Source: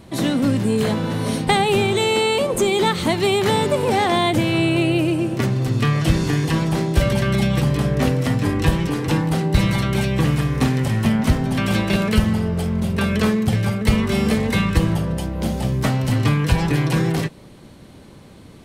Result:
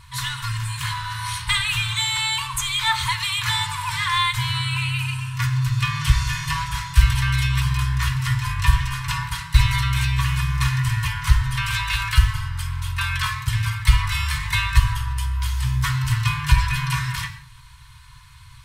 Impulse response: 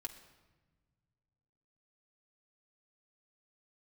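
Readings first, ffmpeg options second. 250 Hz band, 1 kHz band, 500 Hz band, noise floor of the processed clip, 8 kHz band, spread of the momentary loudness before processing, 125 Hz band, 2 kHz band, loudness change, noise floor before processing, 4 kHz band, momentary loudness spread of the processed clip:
under -15 dB, -2.5 dB, under -40 dB, -45 dBFS, +2.0 dB, 4 LU, -2.0 dB, +2.0 dB, -2.5 dB, -43 dBFS, +2.5 dB, 7 LU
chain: -filter_complex "[1:a]atrim=start_sample=2205,afade=t=out:st=0.23:d=0.01,atrim=end_sample=10584[a];[0:a][a]afir=irnorm=-1:irlink=0,afftfilt=real='re*(1-between(b*sr/4096,160,870))':imag='im*(1-between(b*sr/4096,160,870))':win_size=4096:overlap=0.75,volume=5.5dB"

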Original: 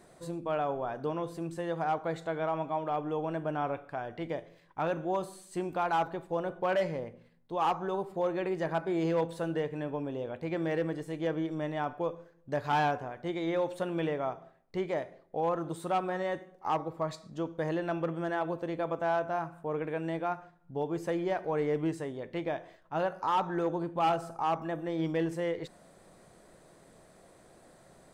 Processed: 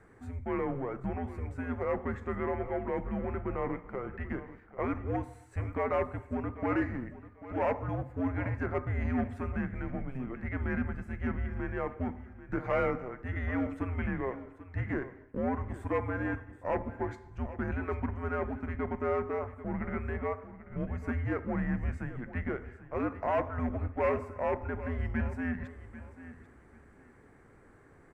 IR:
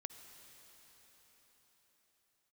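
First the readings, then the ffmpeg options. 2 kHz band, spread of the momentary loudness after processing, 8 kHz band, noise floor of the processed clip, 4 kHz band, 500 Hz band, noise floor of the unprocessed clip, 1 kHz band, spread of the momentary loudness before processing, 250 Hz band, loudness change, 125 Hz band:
+0.5 dB, 8 LU, n/a, -58 dBFS, under -10 dB, -3.0 dB, -60 dBFS, -6.0 dB, 8 LU, +0.5 dB, -1.5 dB, +4.5 dB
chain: -filter_complex "[0:a]highpass=94,asplit=2[a][b];[b]aeval=exprs='clip(val(0),-1,0.02)':c=same,volume=-4dB[c];[a][c]amix=inputs=2:normalize=0,afreqshift=-260,highshelf=f=2.7k:t=q:w=3:g=-10,aecho=1:1:790|1580:0.178|0.0409,asplit=2[d][e];[1:a]atrim=start_sample=2205,afade=t=out:st=0.36:d=0.01,atrim=end_sample=16317,lowpass=7.8k[f];[e][f]afir=irnorm=-1:irlink=0,volume=-2.5dB[g];[d][g]amix=inputs=2:normalize=0,volume=-8dB"

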